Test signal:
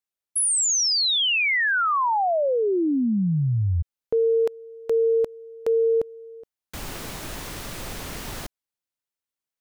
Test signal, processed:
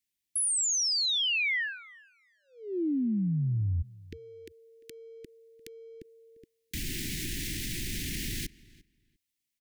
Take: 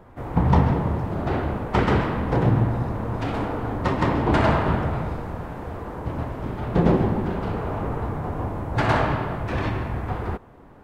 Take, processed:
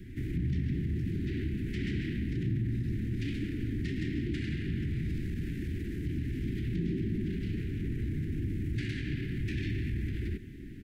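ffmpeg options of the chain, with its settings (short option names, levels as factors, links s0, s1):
-filter_complex "[0:a]acompressor=threshold=0.0224:ratio=6:attack=0.39:release=67:knee=1:detection=peak,asuperstop=centerf=810:order=12:qfactor=0.56,asplit=2[s0][s1];[s1]adelay=348,lowpass=f=3300:p=1,volume=0.0891,asplit=2[s2][s3];[s3]adelay=348,lowpass=f=3300:p=1,volume=0.18[s4];[s2][s4]amix=inputs=2:normalize=0[s5];[s0][s5]amix=inputs=2:normalize=0,volume=1.88"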